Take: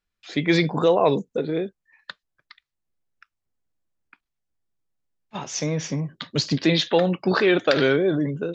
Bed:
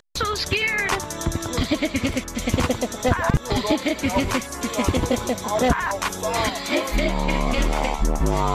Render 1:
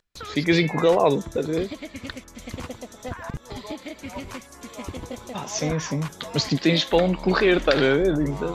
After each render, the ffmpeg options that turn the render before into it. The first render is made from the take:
-filter_complex "[1:a]volume=0.211[s0];[0:a][s0]amix=inputs=2:normalize=0"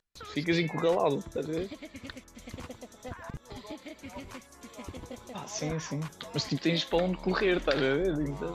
-af "volume=0.398"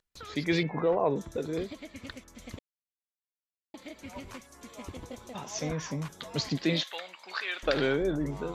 -filter_complex "[0:a]asettb=1/sr,asplit=3[s0][s1][s2];[s0]atrim=end=0.634[s3];[s1]atrim=start=0.63:end=1.16,asetpts=PTS-STARTPTS,afade=t=in:d=0.004:c=qsin,afade=t=out:st=0.526:d=0.004:c=qsin,lowpass=1600[s4];[s2]atrim=start=1.156[s5];[s3][s4]acrossfade=d=0.004:c1=hsin:c2=qsin[s6];[s6][s5]acrossfade=d=0.004:c1=qsin:c2=hsin,asettb=1/sr,asplit=3[s7][s8][s9];[s7]atrim=end=6.834[s10];[s8]atrim=start=6.83:end=7.63,asetpts=PTS-STARTPTS,afade=t=in:d=0.004:c=qsin,afade=t=out:st=0.796:d=0.004:c=qsin,highpass=1400[s11];[s9]atrim=start=7.626[s12];[s10][s11]acrossfade=d=0.004:c1=hsin:c2=qsin[s13];[s13][s12]acrossfade=d=0.004:c1=qsin:c2=hsin,asplit=3[s14][s15][s16];[s14]atrim=end=2.59,asetpts=PTS-STARTPTS,afade=t=out:st=2.586:d=0.004:c=hsin[s17];[s15]atrim=start=2.59:end=3.74,asetpts=PTS-STARTPTS,volume=0[s18];[s16]atrim=start=3.74,asetpts=PTS-STARTPTS,afade=t=in:d=0.004:c=hsin[s19];[s17][s18][s19]concat=n=3:v=0:a=1"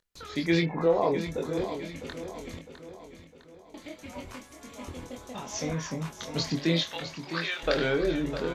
-filter_complex "[0:a]asplit=2[s0][s1];[s1]adelay=24,volume=0.631[s2];[s0][s2]amix=inputs=2:normalize=0,aecho=1:1:656|1312|1968|2624|3280:0.299|0.14|0.0659|0.031|0.0146"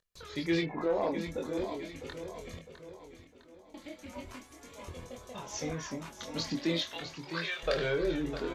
-af "asoftclip=type=tanh:threshold=0.168,flanger=delay=1.7:depth=1.9:regen=-42:speed=0.39:shape=sinusoidal"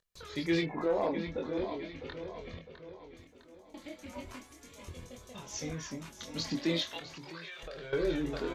-filter_complex "[0:a]asettb=1/sr,asplit=3[s0][s1][s2];[s0]atrim=end=1.074[s3];[s1]atrim=start=1.07:end=3.17,asetpts=PTS-STARTPTS,afade=t=in:d=0.004:c=qsin,afade=t=out:st=2.096:d=0.004:c=qsin,lowpass=f=4500:w=0.5412,lowpass=f=4500:w=1.3066[s4];[s2]atrim=start=3.166[s5];[s3][s4]acrossfade=d=0.004:c1=hsin:c2=qsin[s6];[s6][s5]acrossfade=d=0.004:c1=qsin:c2=hsin,asettb=1/sr,asplit=3[s7][s8][s9];[s7]atrim=end=4.534[s10];[s8]atrim=start=4.53:end=6.45,asetpts=PTS-STARTPTS,afade=t=in:d=0.004:c=qsin,afade=t=out:st=1.916:d=0.004:c=qsin,equalizer=f=790:t=o:w=2:g=-7[s11];[s9]atrim=start=6.446[s12];[s10][s11]acrossfade=d=0.004:c1=hsin:c2=qsin[s13];[s13][s12]acrossfade=d=0.004:c1=qsin:c2=hsin,asettb=1/sr,asplit=3[s14][s15][s16];[s14]atrim=end=6.994[s17];[s15]atrim=start=6.99:end=7.93,asetpts=PTS-STARTPTS,afade=t=in:d=0.004:c=qsin,afade=t=out:st=0.936:d=0.004:c=qsin,acompressor=threshold=0.00794:ratio=6:attack=3.2:release=140:knee=1:detection=peak[s18];[s16]atrim=start=7.926[s19];[s17][s18]acrossfade=d=0.004:c1=hsin:c2=qsin[s20];[s20][s19]acrossfade=d=0.004:c1=qsin:c2=hsin"

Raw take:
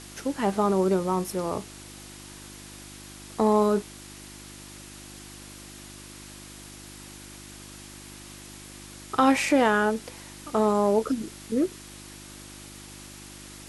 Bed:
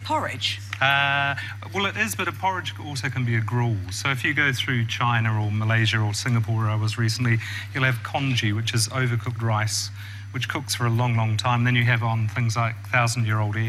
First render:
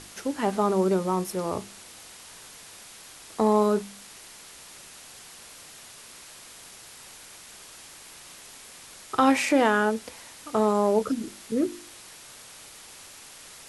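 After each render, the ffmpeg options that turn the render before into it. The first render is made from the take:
-af "bandreject=f=50:t=h:w=4,bandreject=f=100:t=h:w=4,bandreject=f=150:t=h:w=4,bandreject=f=200:t=h:w=4,bandreject=f=250:t=h:w=4,bandreject=f=300:t=h:w=4,bandreject=f=350:t=h:w=4"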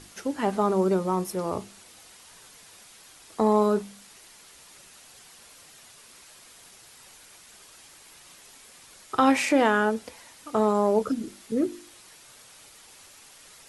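-af "afftdn=nr=6:nf=-47"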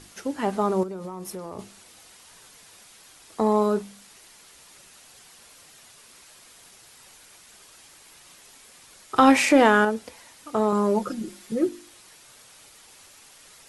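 -filter_complex "[0:a]asettb=1/sr,asplit=3[s0][s1][s2];[s0]atrim=end=0.834[s3];[s1]atrim=start=0.83:end=1.59,asetpts=PTS-STARTPTS,afade=t=in:d=0.004:c=qsin,afade=t=out:st=0.756:d=0.004:c=qsin,acompressor=threshold=0.0282:ratio=8:attack=3.2:release=140:knee=1:detection=peak[s4];[s2]atrim=start=1.586[s5];[s3][s4]acrossfade=d=0.004:c1=hsin:c2=qsin[s6];[s6][s5]acrossfade=d=0.004:c1=qsin:c2=hsin,asettb=1/sr,asplit=3[s7][s8][s9];[s7]atrim=end=9.164[s10];[s8]atrim=start=9.16:end=9.85,asetpts=PTS-STARTPTS,afade=t=in:d=0.004:c=qsin,afade=t=out:st=0.686:d=0.004:c=qsin,acontrast=20[s11];[s9]atrim=start=9.846[s12];[s10][s11]acrossfade=d=0.004:c1=hsin:c2=qsin[s13];[s13][s12]acrossfade=d=0.004:c1=qsin:c2=hsin,asettb=1/sr,asplit=3[s14][s15][s16];[s14]atrim=end=10.724[s17];[s15]atrim=start=10.72:end=11.69,asetpts=PTS-STARTPTS,afade=t=in:d=0.004:c=qsin,afade=t=out:st=0.966:d=0.004:c=qsin,aecho=1:1:5.6:0.76,atrim=end_sample=42777[s18];[s16]atrim=start=11.686[s19];[s17][s18]acrossfade=d=0.004:c1=hsin:c2=qsin[s20];[s20][s19]acrossfade=d=0.004:c1=qsin:c2=hsin"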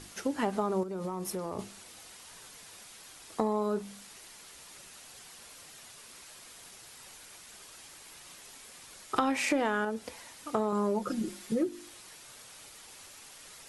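-af "acompressor=threshold=0.0501:ratio=6"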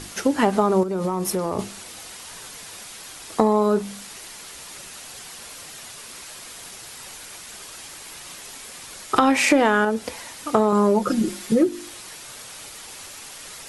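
-af "volume=3.76,alimiter=limit=0.891:level=0:latency=1"

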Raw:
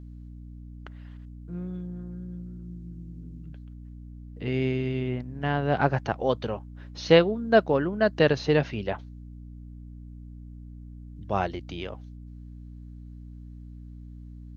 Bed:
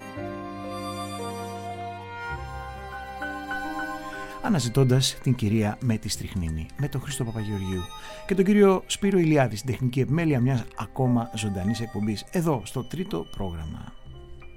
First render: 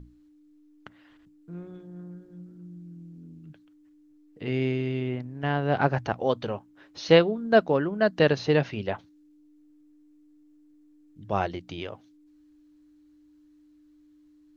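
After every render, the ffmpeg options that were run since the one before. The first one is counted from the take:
-af "bandreject=f=60:t=h:w=6,bandreject=f=120:t=h:w=6,bandreject=f=180:t=h:w=6,bandreject=f=240:t=h:w=6"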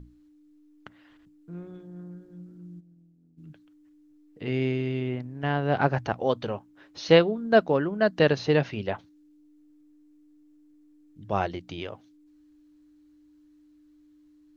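-filter_complex "[0:a]asplit=3[s0][s1][s2];[s0]afade=t=out:st=2.79:d=0.02[s3];[s1]agate=range=0.0224:threshold=0.0158:ratio=3:release=100:detection=peak,afade=t=in:st=2.79:d=0.02,afade=t=out:st=3.37:d=0.02[s4];[s2]afade=t=in:st=3.37:d=0.02[s5];[s3][s4][s5]amix=inputs=3:normalize=0"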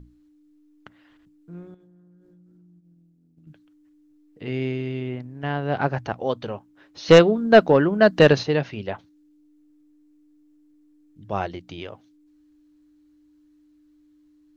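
-filter_complex "[0:a]asettb=1/sr,asplit=3[s0][s1][s2];[s0]atrim=end=1.744[s3];[s1]atrim=start=1.74:end=3.47,asetpts=PTS-STARTPTS,afade=t=in:d=0.004:c=qsin,afade=t=out:st=1.726:d=0.004:c=qsin,acompressor=threshold=0.00282:ratio=12:attack=3.2:release=140:knee=1:detection=peak[s4];[s2]atrim=start=3.466[s5];[s3][s4]acrossfade=d=0.004:c1=hsin:c2=qsin[s6];[s6][s5]acrossfade=d=0.004:c1=qsin:c2=hsin,asplit=3[s7][s8][s9];[s7]afade=t=out:st=7.07:d=0.02[s10];[s8]aeval=exprs='0.596*sin(PI/2*1.58*val(0)/0.596)':c=same,afade=t=in:st=7.07:d=0.02,afade=t=out:st=8.42:d=0.02[s11];[s9]afade=t=in:st=8.42:d=0.02[s12];[s10][s11][s12]amix=inputs=3:normalize=0"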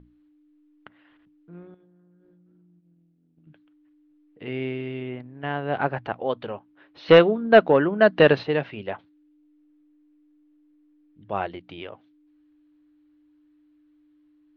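-af "lowpass=f=3400:w=0.5412,lowpass=f=3400:w=1.3066,lowshelf=f=180:g=-9.5"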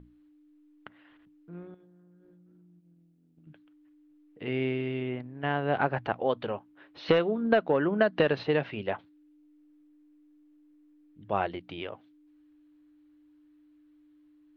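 -af "acompressor=threshold=0.1:ratio=10"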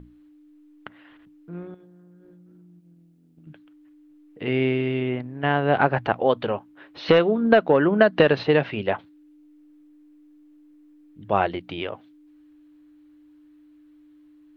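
-af "volume=2.37,alimiter=limit=0.708:level=0:latency=1"

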